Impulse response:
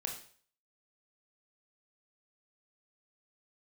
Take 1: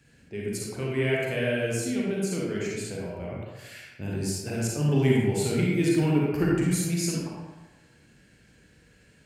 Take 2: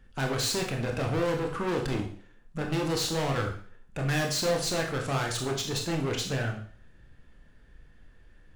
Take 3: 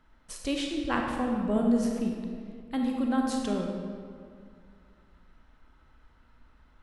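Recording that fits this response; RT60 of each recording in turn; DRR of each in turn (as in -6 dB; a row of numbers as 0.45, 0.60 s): 2; 1.1, 0.50, 2.2 s; -4.5, 1.0, 0.5 dB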